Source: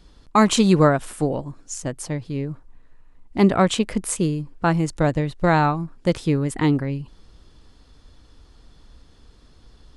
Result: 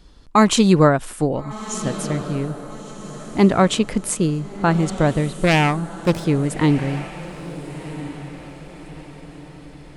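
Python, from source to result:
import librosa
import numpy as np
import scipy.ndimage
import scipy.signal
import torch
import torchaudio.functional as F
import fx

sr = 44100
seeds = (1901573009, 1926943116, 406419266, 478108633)

y = fx.self_delay(x, sr, depth_ms=0.27, at=(5.44, 6.25))
y = fx.echo_diffused(y, sr, ms=1351, feedback_pct=44, wet_db=-13.5)
y = y * 10.0 ** (2.0 / 20.0)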